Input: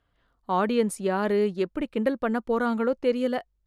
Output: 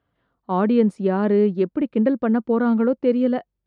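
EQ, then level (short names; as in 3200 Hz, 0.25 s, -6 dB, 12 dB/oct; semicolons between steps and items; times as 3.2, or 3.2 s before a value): tilt -2 dB/oct; dynamic EQ 230 Hz, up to +5 dB, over -34 dBFS, Q 0.76; BPF 130–4600 Hz; 0.0 dB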